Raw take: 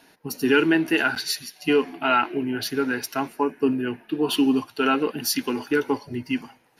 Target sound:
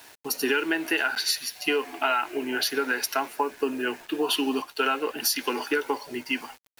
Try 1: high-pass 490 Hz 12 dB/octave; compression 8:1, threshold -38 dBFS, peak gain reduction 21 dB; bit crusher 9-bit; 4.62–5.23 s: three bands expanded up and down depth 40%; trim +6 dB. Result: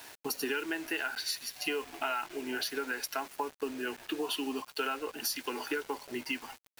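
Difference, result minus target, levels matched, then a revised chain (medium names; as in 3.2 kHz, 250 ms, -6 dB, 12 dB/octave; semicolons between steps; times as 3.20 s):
compression: peak gain reduction +9 dB
high-pass 490 Hz 12 dB/octave; compression 8:1, threshold -27.5 dBFS, peak gain reduction 11.5 dB; bit crusher 9-bit; 4.62–5.23 s: three bands expanded up and down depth 40%; trim +6 dB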